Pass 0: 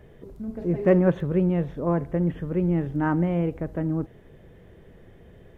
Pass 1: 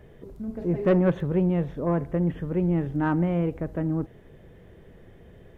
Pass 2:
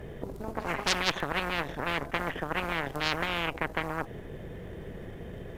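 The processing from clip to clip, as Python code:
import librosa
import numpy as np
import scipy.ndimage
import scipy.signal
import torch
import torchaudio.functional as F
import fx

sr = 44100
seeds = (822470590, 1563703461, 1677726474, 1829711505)

y1 = 10.0 ** (-12.5 / 20.0) * np.tanh(x / 10.0 ** (-12.5 / 20.0))
y2 = fx.cheby_harmonics(y1, sr, harmonics=(3, 6), levels_db=(-11, -29), full_scale_db=-13.0)
y2 = fx.spectral_comp(y2, sr, ratio=10.0)
y2 = y2 * 10.0 ** (1.5 / 20.0)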